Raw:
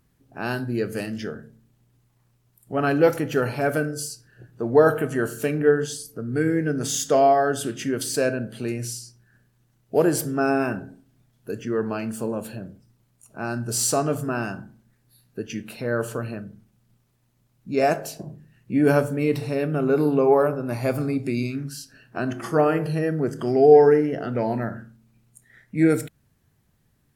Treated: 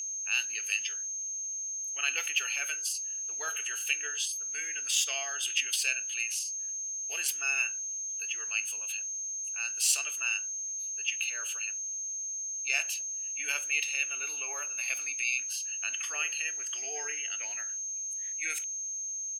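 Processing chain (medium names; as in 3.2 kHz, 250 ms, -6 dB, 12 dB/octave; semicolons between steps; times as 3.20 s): tempo 1.4×; whistle 6.4 kHz -32 dBFS; resonant high-pass 2.7 kHz, resonance Q 7.5; trim -3 dB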